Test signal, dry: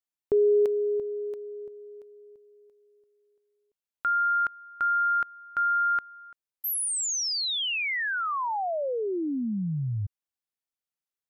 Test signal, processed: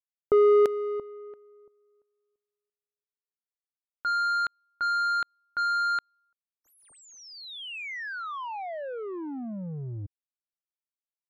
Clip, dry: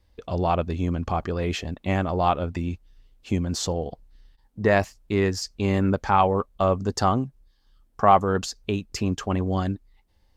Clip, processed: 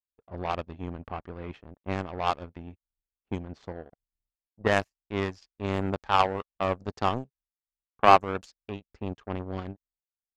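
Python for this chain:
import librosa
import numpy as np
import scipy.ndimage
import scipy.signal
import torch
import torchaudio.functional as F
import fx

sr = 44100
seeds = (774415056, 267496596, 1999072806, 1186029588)

y = fx.power_curve(x, sr, exponent=2.0)
y = fx.env_lowpass(y, sr, base_hz=1100.0, full_db=-26.5)
y = F.gain(torch.from_numpy(y), 3.5).numpy()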